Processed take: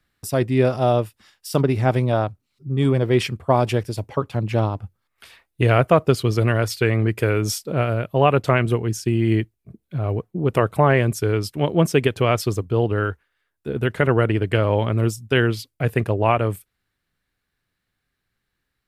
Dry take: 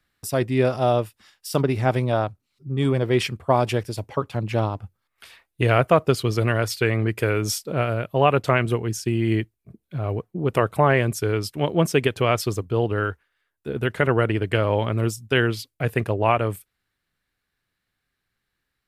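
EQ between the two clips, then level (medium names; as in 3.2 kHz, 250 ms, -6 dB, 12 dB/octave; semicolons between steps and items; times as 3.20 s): bass shelf 480 Hz +3.5 dB; 0.0 dB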